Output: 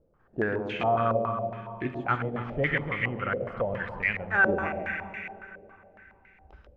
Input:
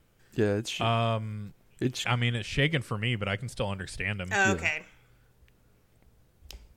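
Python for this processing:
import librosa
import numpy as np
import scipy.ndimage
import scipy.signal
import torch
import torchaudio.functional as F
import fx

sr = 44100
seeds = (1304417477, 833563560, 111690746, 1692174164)

y = fx.peak_eq(x, sr, hz=110.0, db=-7.0, octaves=0.29)
y = fx.echo_feedback(y, sr, ms=139, feedback_pct=48, wet_db=-6.0)
y = fx.rev_plate(y, sr, seeds[0], rt60_s=3.3, hf_ratio=0.95, predelay_ms=0, drr_db=7.0)
y = fx.filter_held_lowpass(y, sr, hz=7.2, low_hz=530.0, high_hz=2100.0)
y = y * librosa.db_to_amplitude(-4.0)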